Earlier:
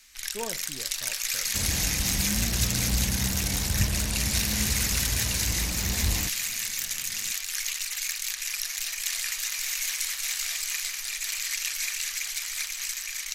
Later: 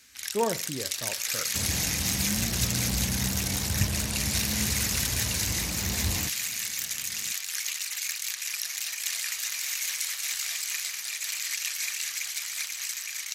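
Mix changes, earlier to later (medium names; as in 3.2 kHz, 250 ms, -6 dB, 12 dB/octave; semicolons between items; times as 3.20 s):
speech +9.0 dB; first sound: send off; master: add high-pass 68 Hz 24 dB/octave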